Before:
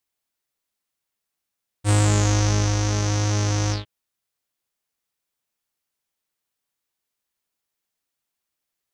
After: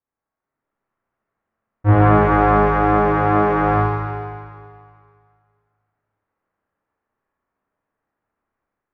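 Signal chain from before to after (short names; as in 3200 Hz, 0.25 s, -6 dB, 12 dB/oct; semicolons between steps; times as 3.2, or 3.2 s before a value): LPF 1600 Hz 24 dB/oct; AGC gain up to 8.5 dB; Schroeder reverb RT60 2.1 s, combs from 28 ms, DRR -6 dB; gain -2 dB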